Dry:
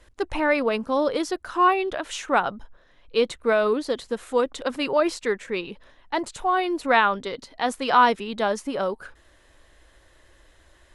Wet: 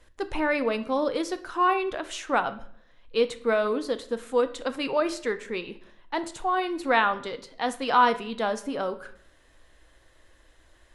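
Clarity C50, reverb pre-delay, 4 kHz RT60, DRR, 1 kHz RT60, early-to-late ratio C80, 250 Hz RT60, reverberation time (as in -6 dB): 15.0 dB, 4 ms, 0.50 s, 10.0 dB, 0.55 s, 18.5 dB, 0.75 s, 0.60 s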